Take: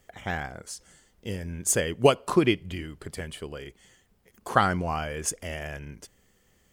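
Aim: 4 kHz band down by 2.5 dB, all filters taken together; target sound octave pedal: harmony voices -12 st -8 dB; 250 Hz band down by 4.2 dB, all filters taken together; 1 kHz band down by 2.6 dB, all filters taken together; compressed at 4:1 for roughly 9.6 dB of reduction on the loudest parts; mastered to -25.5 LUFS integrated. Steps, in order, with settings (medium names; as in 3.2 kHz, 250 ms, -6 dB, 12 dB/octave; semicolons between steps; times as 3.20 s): peaking EQ 250 Hz -6.5 dB; peaking EQ 1 kHz -3 dB; peaking EQ 4 kHz -3.5 dB; compression 4:1, threshold -29 dBFS; harmony voices -12 st -8 dB; trim +10 dB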